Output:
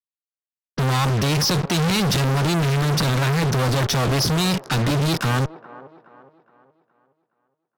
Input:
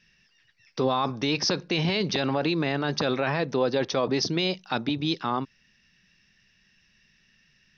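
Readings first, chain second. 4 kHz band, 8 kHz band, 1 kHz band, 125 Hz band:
+5.0 dB, n/a, +4.5 dB, +14.0 dB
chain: graphic EQ 125/250/500/1000/2000/4000 Hz +9/-4/-8/-9/-5/-5 dB; fuzz box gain 52 dB, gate -47 dBFS; bell 1300 Hz +3 dB 1.1 oct; low-pass opened by the level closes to 380 Hz, open at -16.5 dBFS; on a send: band-limited delay 0.418 s, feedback 41%, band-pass 640 Hz, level -14 dB; on the sum: gain -5.5 dB

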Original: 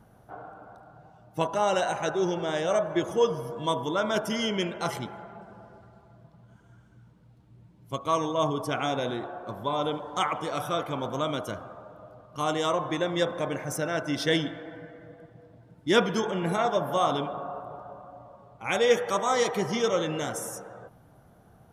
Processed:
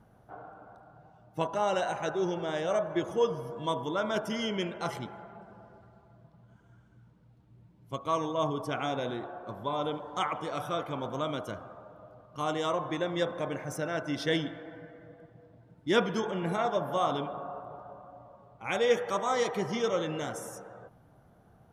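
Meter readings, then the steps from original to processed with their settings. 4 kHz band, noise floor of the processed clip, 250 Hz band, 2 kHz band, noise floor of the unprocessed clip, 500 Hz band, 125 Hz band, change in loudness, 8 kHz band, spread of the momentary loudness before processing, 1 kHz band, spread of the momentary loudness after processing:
-5.5 dB, -60 dBFS, -3.5 dB, -4.0 dB, -57 dBFS, -3.5 dB, -3.5 dB, -4.0 dB, -7.5 dB, 19 LU, -3.5 dB, 19 LU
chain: high shelf 5500 Hz -6.5 dB; gain -3.5 dB

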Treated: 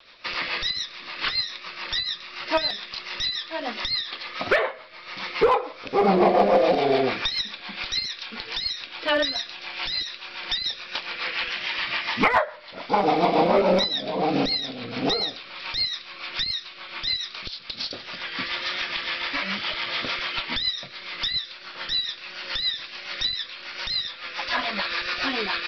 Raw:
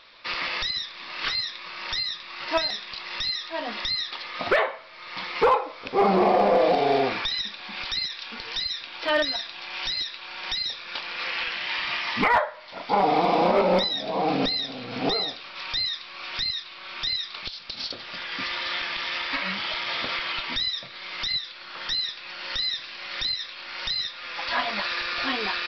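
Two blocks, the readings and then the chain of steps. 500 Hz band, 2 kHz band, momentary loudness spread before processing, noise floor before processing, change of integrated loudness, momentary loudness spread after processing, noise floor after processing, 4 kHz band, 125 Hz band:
+1.5 dB, +1.0 dB, 12 LU, -42 dBFS, +1.0 dB, 12 LU, -43 dBFS, +1.0 dB, +2.0 dB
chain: rotary speaker horn 7 Hz; vibrato 1.4 Hz 41 cents; gain +3.5 dB

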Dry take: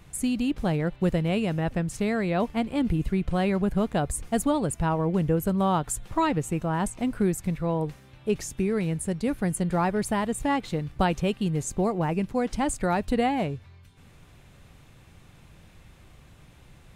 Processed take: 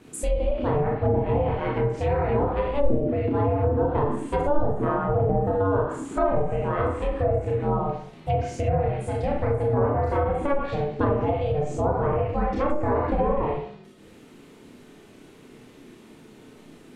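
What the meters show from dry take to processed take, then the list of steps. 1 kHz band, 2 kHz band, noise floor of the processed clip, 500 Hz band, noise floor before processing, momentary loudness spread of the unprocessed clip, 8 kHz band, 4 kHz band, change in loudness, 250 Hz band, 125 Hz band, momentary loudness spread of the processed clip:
+2.5 dB, -2.0 dB, -50 dBFS, +5.5 dB, -53 dBFS, 4 LU, under -10 dB, n/a, +2.0 dB, -3.5 dB, +3.0 dB, 4 LU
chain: ring modulator 290 Hz; Schroeder reverb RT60 0.59 s, combs from 25 ms, DRR -3 dB; treble ducked by the level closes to 790 Hz, closed at -18.5 dBFS; gain +1.5 dB

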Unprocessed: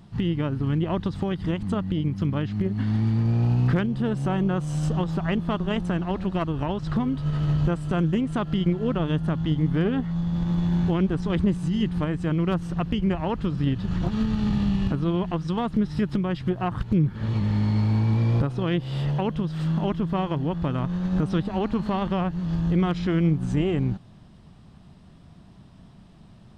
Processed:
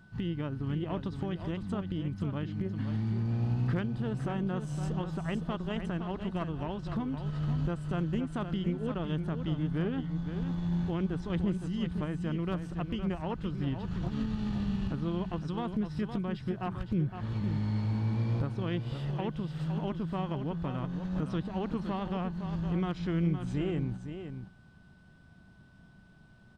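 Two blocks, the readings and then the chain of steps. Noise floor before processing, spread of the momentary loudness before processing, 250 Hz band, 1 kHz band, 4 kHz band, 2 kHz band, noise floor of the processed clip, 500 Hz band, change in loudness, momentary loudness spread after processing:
-50 dBFS, 4 LU, -8.5 dB, -8.5 dB, -8.5 dB, -8.0 dB, -57 dBFS, -8.5 dB, -8.5 dB, 4 LU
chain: whine 1500 Hz -51 dBFS; echo 0.513 s -8.5 dB; gain -9 dB

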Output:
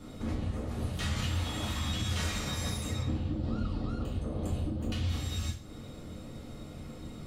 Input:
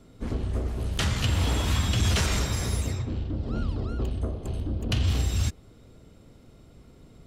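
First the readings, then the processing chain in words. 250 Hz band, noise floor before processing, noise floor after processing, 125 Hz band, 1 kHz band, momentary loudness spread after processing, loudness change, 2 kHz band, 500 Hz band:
-2.5 dB, -53 dBFS, -45 dBFS, -6.5 dB, -5.0 dB, 13 LU, -6.5 dB, -6.5 dB, -5.5 dB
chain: compressor, threshold -34 dBFS, peak gain reduction 14 dB; limiter -33 dBFS, peak gain reduction 9 dB; two-slope reverb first 0.41 s, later 2.1 s, from -28 dB, DRR -5.5 dB; gain +2.5 dB

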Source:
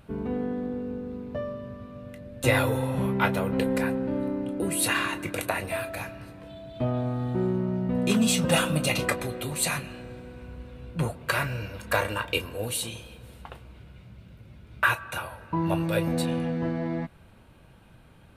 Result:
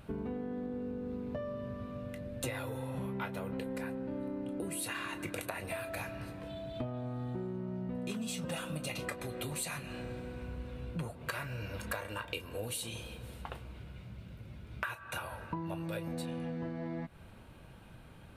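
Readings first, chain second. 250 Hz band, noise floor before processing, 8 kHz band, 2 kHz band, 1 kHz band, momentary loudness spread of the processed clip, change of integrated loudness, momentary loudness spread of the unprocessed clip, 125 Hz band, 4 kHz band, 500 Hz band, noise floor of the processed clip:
-11.0 dB, -53 dBFS, -11.5 dB, -12.5 dB, -12.0 dB, 10 LU, -12.0 dB, 19 LU, -10.5 dB, -12.0 dB, -11.0 dB, -53 dBFS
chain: compressor 12:1, threshold -35 dBFS, peak gain reduction 18.5 dB

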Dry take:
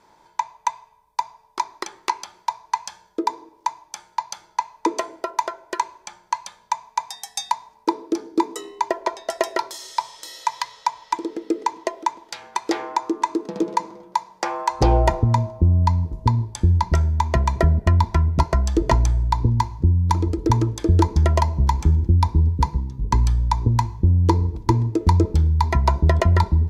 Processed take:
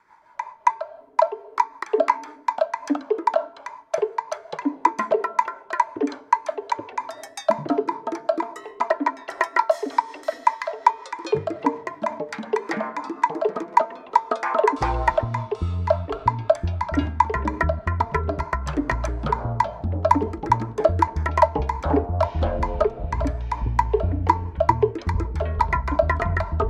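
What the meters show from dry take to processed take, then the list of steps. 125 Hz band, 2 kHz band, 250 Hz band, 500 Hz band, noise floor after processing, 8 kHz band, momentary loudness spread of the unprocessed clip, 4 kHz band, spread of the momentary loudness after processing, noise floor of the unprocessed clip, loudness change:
-9.0 dB, +4.0 dB, -3.0 dB, +5.0 dB, -47 dBFS, -10.0 dB, 11 LU, -7.5 dB, 7 LU, -57 dBFS, -1.5 dB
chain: rotary speaker horn 5.5 Hz; band shelf 1400 Hz +15 dB; echoes that change speed 0.217 s, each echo -7 st, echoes 3; de-hum 225.9 Hz, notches 7; gain -8 dB

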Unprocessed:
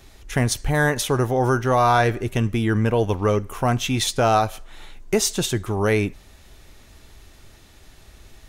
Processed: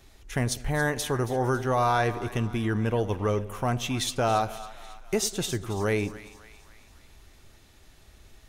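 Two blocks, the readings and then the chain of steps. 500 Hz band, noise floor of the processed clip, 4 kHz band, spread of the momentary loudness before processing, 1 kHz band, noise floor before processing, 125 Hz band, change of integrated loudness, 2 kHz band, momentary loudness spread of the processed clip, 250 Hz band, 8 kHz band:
-6.5 dB, -55 dBFS, -6.5 dB, 6 LU, -6.5 dB, -49 dBFS, -6.5 dB, -6.5 dB, -6.5 dB, 9 LU, -6.5 dB, -6.5 dB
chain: split-band echo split 750 Hz, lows 97 ms, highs 0.276 s, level -15 dB; gain -6.5 dB

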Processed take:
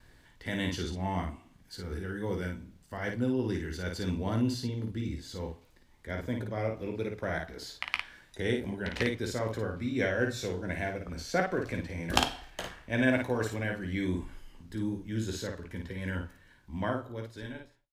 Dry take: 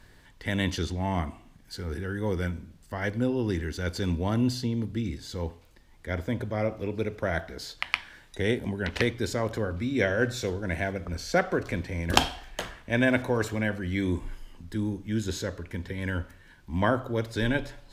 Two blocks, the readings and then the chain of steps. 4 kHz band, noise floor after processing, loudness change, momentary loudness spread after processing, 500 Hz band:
-4.0 dB, -61 dBFS, -4.0 dB, 12 LU, -4.0 dB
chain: ending faded out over 1.67 s; gate with hold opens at -51 dBFS; on a send: early reflections 16 ms -9.5 dB, 54 ms -4.5 dB; on the sum: gain -5.5 dB

